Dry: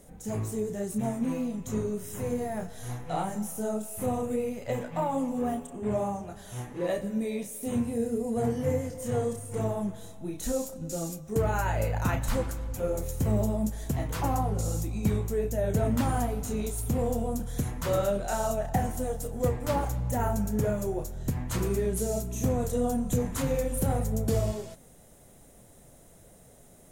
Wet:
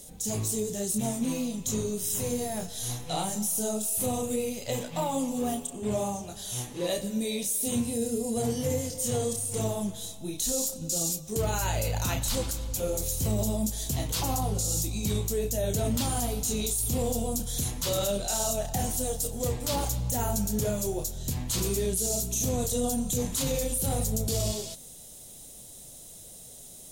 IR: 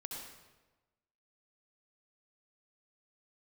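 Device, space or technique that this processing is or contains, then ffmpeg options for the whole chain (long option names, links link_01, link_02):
over-bright horn tweeter: -af "highshelf=frequency=2600:width_type=q:width=1.5:gain=12.5,alimiter=limit=-19dB:level=0:latency=1:release=18"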